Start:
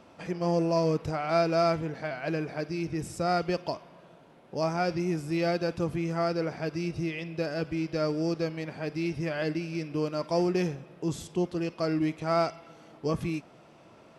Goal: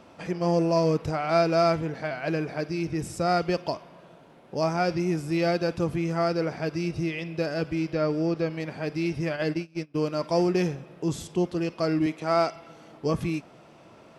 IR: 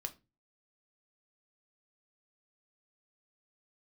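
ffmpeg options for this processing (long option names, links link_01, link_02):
-filter_complex "[0:a]asettb=1/sr,asplit=3[link_01][link_02][link_03];[link_01]atrim=end=7.904[link_04];[link_02]atrim=start=7.9:end=8.6,asetpts=PTS-STARTPTS,afade=type=in:duration=0.004:curve=qsin,afade=type=out:start_time=0.696:duration=0.004:curve=qsin,acrossover=split=4000[link_05][link_06];[link_06]acompressor=threshold=-59dB:ratio=4:attack=1:release=60[link_07];[link_05][link_07]amix=inputs=2:normalize=0[link_08];[link_03]atrim=start=8.596[link_09];[link_04][link_08]acrossfade=duration=0.004:curve1=hsin:curve2=qsin[link_10];[link_10][link_09]acrossfade=duration=0.004:curve1=qsin:curve2=hsin,asplit=3[link_11][link_12][link_13];[link_11]afade=type=out:start_time=9.35:duration=0.02[link_14];[link_12]agate=range=-24dB:threshold=-31dB:ratio=16:detection=peak,afade=type=in:start_time=9.35:duration=0.02,afade=type=out:start_time=9.94:duration=0.02[link_15];[link_13]afade=type=in:start_time=9.94:duration=0.02[link_16];[link_14][link_15][link_16]amix=inputs=3:normalize=0,asettb=1/sr,asplit=3[link_17][link_18][link_19];[link_17]atrim=end=12.064[link_20];[link_18]atrim=start=12.06:end=12.56,asetpts=PTS-STARTPTS,afade=type=in:duration=0.004:curve=qsin,afade=type=out:start_time=0.496:duration=0.004:curve=qsin,highpass=190[link_21];[link_19]atrim=start=12.556[link_22];[link_20][link_21]acrossfade=duration=0.004:curve1=hsin:curve2=qsin[link_23];[link_23][link_22]acrossfade=duration=0.004:curve1=qsin:curve2=hsin,volume=3dB"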